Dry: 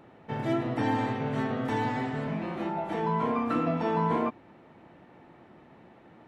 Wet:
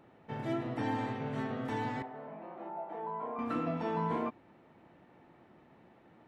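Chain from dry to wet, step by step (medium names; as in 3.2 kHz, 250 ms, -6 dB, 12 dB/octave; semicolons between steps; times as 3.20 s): 2.02–3.39 s: band-pass filter 710 Hz, Q 1.4; trim -6.5 dB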